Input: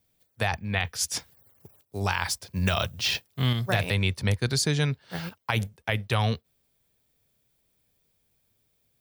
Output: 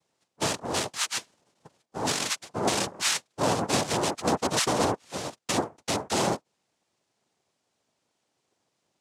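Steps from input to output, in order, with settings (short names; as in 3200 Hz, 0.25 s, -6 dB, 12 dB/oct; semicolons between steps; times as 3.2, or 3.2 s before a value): noise vocoder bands 2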